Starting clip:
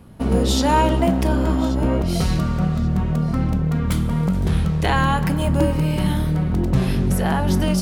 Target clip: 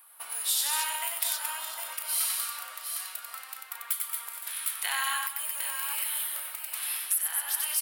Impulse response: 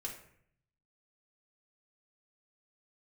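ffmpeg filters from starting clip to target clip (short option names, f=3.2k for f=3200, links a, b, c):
-filter_complex "[0:a]asplit=2[a][b];[b]aecho=0:1:93|211|224|756|781:0.631|0.126|0.501|0.473|0.112[c];[a][c]amix=inputs=2:normalize=0,flanger=delay=0.5:depth=9.7:regen=74:speed=0.51:shape=triangular,acrossover=split=1700[d][e];[d]acompressor=threshold=-28dB:ratio=6[f];[e]aexciter=amount=8.2:drive=3.7:freq=8.8k[g];[f][g]amix=inputs=2:normalize=0,highpass=f=990:w=0.5412,highpass=f=990:w=1.3066,alimiter=limit=-13.5dB:level=0:latency=1:release=482"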